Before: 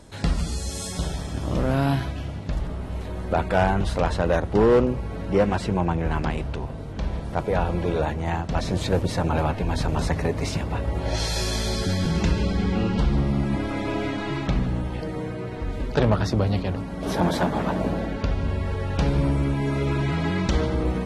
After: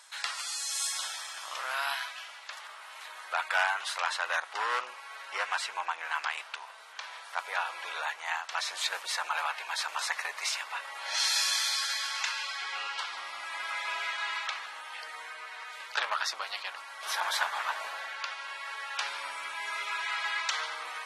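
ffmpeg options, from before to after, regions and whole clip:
ffmpeg -i in.wav -filter_complex "[0:a]asettb=1/sr,asplit=3[link_01][link_02][link_03];[link_01]atrim=end=11.544[link_04];[link_02]atrim=start=11.54:end=12.61,asetpts=PTS-STARTPTS,afade=type=in:duration=0.004:curve=qsin,afade=type=out:start_time=1.066:duration=0.004:curve=qsin,highpass=620,asplit=2[link_05][link_06];[link_06]adelay=41,volume=-13.5dB[link_07];[link_05][link_07]amix=inputs=2:normalize=0,atrim=end_sample=47187[link_08];[link_03]atrim=start=12.606[link_09];[link_04][link_08]acrossfade=duration=0.004:curve1=hsin:curve2=qsin[link_10];[link_10][link_09]acrossfade=duration=0.004:curve1=qsin:curve2=hsin,highpass=frequency=1100:width=0.5412,highpass=frequency=1100:width=1.3066,acontrast=54,volume=-3.5dB" out.wav

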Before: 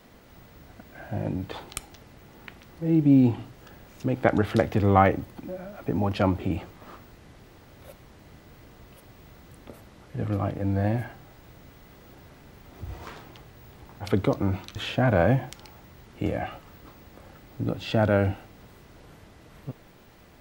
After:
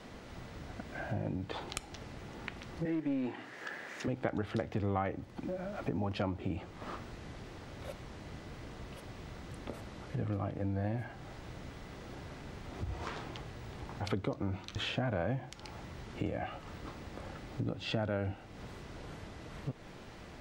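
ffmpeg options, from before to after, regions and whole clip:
ffmpeg -i in.wav -filter_complex "[0:a]asettb=1/sr,asplit=3[link_01][link_02][link_03];[link_01]atrim=end=2.854[link_04];[link_02]atrim=start=2.85:end=4.08,asetpts=PTS-STARTPTS,afade=type=in:duration=0.004:curve=qsin,afade=type=out:start_time=1.226:duration=0.004:curve=qsin,highpass=320,equalizer=frequency=1800:width=2.5:gain=13.5,aeval=exprs='clip(val(0),-1,0.0794)':channel_layout=same[link_05];[link_03]atrim=start=4.076[link_06];[link_04][link_05]acrossfade=duration=0.004:curve1=hsin:curve2=qsin[link_07];[link_07][link_06]acrossfade=duration=0.004:curve1=qsin:curve2=hsin,lowpass=7800,acompressor=threshold=-40dB:ratio=3,volume=3.5dB" out.wav

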